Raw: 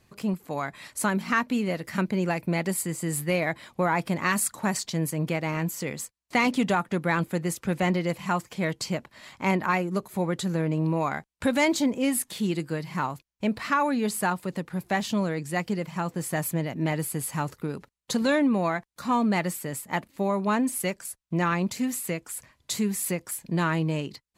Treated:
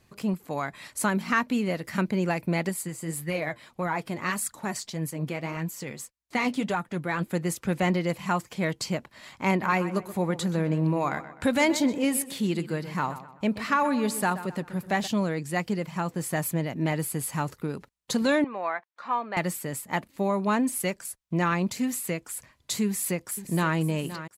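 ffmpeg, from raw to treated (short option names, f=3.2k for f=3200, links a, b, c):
-filter_complex "[0:a]asettb=1/sr,asplit=3[a][b][c];[a]atrim=end=2.694[d];[b]atrim=start=2.69:end=7.3,asetpts=PTS-STARTPTS,afade=t=in:d=0.004:c=qsin,afade=t=out:st=4.606:d=0.004:c=qsin,flanger=delay=0.5:depth=8.1:regen=54:speed=1.7:shape=sinusoidal[e];[c]atrim=start=7.296[f];[d][e]acrossfade=d=0.004:c1=hsin:c2=qsin[g];[g][f]acrossfade=d=0.004:c1=qsin:c2=hsin,asplit=3[h][i][j];[h]afade=t=out:st=9.61:d=0.02[k];[i]asplit=2[l][m];[m]adelay=127,lowpass=f=3.5k:p=1,volume=-13dB,asplit=2[n][o];[o]adelay=127,lowpass=f=3.5k:p=1,volume=0.42,asplit=2[p][q];[q]adelay=127,lowpass=f=3.5k:p=1,volume=0.42,asplit=2[r][s];[s]adelay=127,lowpass=f=3.5k:p=1,volume=0.42[t];[l][n][p][r][t]amix=inputs=5:normalize=0,afade=t=in:st=9.61:d=0.02,afade=t=out:st=15.06:d=0.02[u];[j]afade=t=in:st=15.06:d=0.02[v];[k][u][v]amix=inputs=3:normalize=0,asettb=1/sr,asplit=3[w][x][y];[w]atrim=end=18.444[z];[x]atrim=start=18.44:end=19.37,asetpts=PTS-STARTPTS,afade=t=in:d=0.004:c=qsin,afade=t=out:st=0.926:d=0.004:c=qsin,highpass=680,lowpass=2.3k[aa];[y]atrim=start=19.366[ab];[z][aa]acrossfade=d=0.004:c1=hsin:c2=qsin[ac];[ac][ab]acrossfade=d=0.004:c1=qsin:c2=hsin,asplit=2[ad][ae];[ae]afade=t=in:st=22.85:d=0.01,afade=t=out:st=23.75:d=0.01,aecho=0:1:520|1040|1560|2080|2600:0.237137|0.118569|0.0592843|0.0296422|0.0148211[af];[ad][af]amix=inputs=2:normalize=0"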